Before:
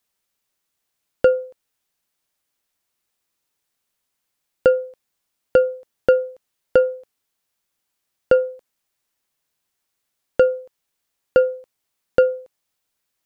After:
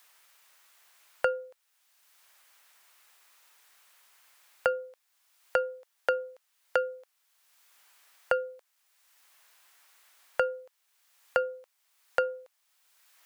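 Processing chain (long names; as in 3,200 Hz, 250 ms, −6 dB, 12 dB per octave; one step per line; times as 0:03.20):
high-pass filter 950 Hz 12 dB per octave
multiband upward and downward compressor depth 70%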